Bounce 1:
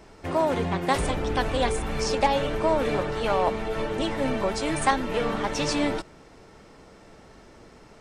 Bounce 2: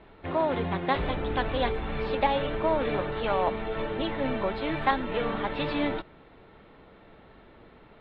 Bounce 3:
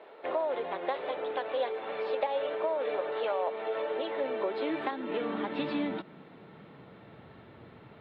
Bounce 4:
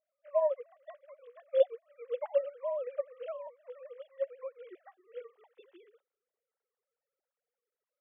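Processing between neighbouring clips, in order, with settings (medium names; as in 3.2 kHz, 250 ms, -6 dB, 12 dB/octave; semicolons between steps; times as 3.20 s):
elliptic low-pass 3.8 kHz, stop band 40 dB; trim -2 dB
compression 6:1, threshold -32 dBFS, peak gain reduction 14 dB; high-pass sweep 510 Hz -> 110 Hz, 3.92–7.24 s
formants replaced by sine waves; upward expansion 2.5:1, over -46 dBFS; trim +3 dB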